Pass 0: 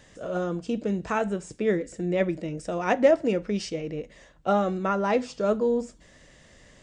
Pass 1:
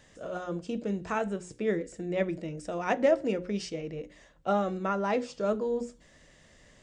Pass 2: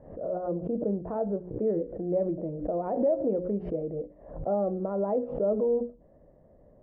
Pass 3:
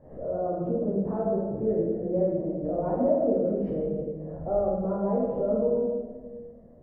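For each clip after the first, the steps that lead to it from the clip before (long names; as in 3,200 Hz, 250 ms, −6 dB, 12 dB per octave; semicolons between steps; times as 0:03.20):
mains-hum notches 60/120/180/240/300/360/420/480/540 Hz; level −4 dB
brickwall limiter −22.5 dBFS, peak gain reduction 9.5 dB; transistor ladder low-pass 760 Hz, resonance 40%; background raised ahead of every attack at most 90 dB per second; level +9 dB
convolution reverb RT60 1.4 s, pre-delay 13 ms, DRR −4 dB; level −4 dB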